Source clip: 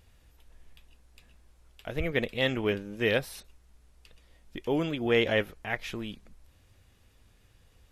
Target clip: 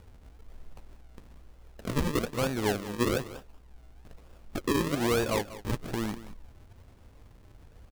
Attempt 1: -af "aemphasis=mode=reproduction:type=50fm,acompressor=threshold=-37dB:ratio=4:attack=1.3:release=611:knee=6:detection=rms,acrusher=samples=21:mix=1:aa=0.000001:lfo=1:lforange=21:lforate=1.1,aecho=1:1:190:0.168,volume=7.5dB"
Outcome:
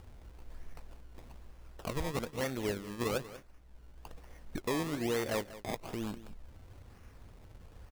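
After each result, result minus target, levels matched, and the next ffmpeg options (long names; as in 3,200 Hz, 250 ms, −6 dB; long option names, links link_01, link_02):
downward compressor: peak gain reduction +6.5 dB; sample-and-hold swept by an LFO: distortion −7 dB
-af "aemphasis=mode=reproduction:type=50fm,acompressor=threshold=-28.5dB:ratio=4:attack=1.3:release=611:knee=6:detection=rms,acrusher=samples=21:mix=1:aa=0.000001:lfo=1:lforange=21:lforate=1.1,aecho=1:1:190:0.168,volume=7.5dB"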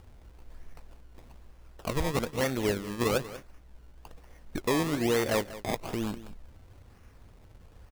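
sample-and-hold swept by an LFO: distortion −7 dB
-af "aemphasis=mode=reproduction:type=50fm,acompressor=threshold=-28.5dB:ratio=4:attack=1.3:release=611:knee=6:detection=rms,acrusher=samples=42:mix=1:aa=0.000001:lfo=1:lforange=42:lforate=1.1,aecho=1:1:190:0.168,volume=7.5dB"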